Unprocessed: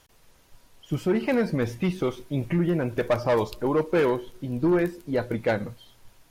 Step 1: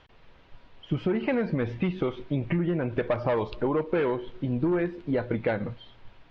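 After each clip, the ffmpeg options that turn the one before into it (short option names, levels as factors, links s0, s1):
-af "lowpass=f=3500:w=0.5412,lowpass=f=3500:w=1.3066,acompressor=threshold=0.0447:ratio=6,volume=1.58"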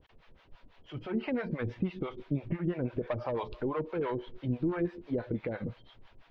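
-filter_complex "[0:a]alimiter=limit=0.126:level=0:latency=1:release=186,acrossover=split=520[s0][s1];[s0]aeval=exprs='val(0)*(1-1/2+1/2*cos(2*PI*6*n/s))':c=same[s2];[s1]aeval=exprs='val(0)*(1-1/2-1/2*cos(2*PI*6*n/s))':c=same[s3];[s2][s3]amix=inputs=2:normalize=0"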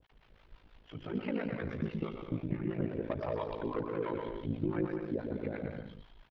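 -af "aecho=1:1:120|204|262.8|304|332.8:0.631|0.398|0.251|0.158|0.1,aeval=exprs='val(0)*sin(2*PI*27*n/s)':c=same,volume=0.841"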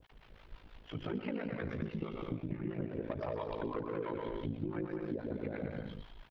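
-af "acompressor=threshold=0.0112:ratio=6,volume=1.68"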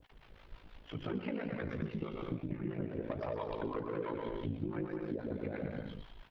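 -af "flanger=delay=3.3:depth=7.9:regen=83:speed=1.2:shape=sinusoidal,volume=1.68"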